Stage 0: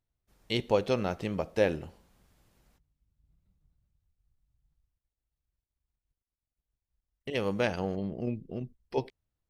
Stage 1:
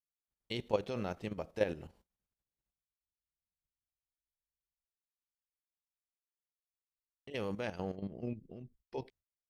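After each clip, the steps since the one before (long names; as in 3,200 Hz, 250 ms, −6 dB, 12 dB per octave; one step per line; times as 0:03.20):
noise gate −55 dBFS, range −23 dB
output level in coarse steps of 11 dB
level −4 dB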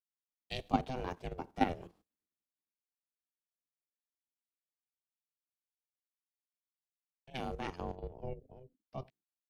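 ring modulation 260 Hz
multiband upward and downward expander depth 40%
level +1.5 dB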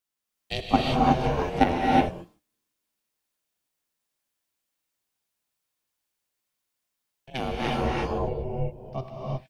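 reverb whose tail is shaped and stops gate 390 ms rising, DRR −3.5 dB
level +9 dB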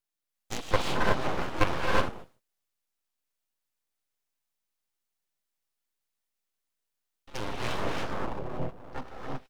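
full-wave rectification
level −2 dB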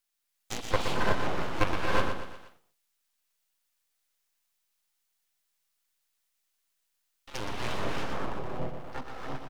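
on a send: repeating echo 120 ms, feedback 37%, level −8 dB
on the sum: one half of a high-frequency compander encoder only
level −2 dB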